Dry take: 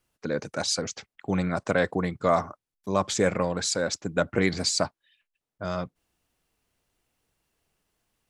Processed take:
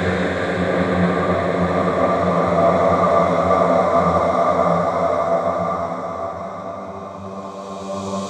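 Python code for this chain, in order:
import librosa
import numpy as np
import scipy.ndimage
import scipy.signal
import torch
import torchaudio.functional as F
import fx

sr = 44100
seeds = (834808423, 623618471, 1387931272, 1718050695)

y = fx.paulstretch(x, sr, seeds[0], factor=9.7, window_s=1.0, from_s=1.94)
y = fx.band_widen(y, sr, depth_pct=70)
y = F.gain(torch.from_numpy(y), 8.5).numpy()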